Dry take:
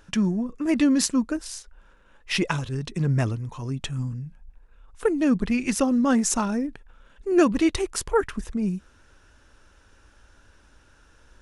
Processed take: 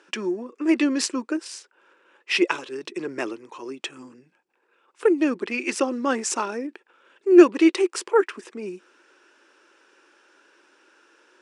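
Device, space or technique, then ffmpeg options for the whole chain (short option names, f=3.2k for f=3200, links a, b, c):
phone speaker on a table: -af "highpass=f=340:w=0.5412,highpass=f=340:w=1.3066,equalizer=f=350:t=q:w=4:g=9,equalizer=f=680:t=q:w=4:g=-5,equalizer=f=2.5k:t=q:w=4:g=4,equalizer=f=3.8k:t=q:w=4:g=-3,equalizer=f=6.5k:t=q:w=4:g=-5,lowpass=f=8.3k:w=0.5412,lowpass=f=8.3k:w=1.3066,volume=2dB"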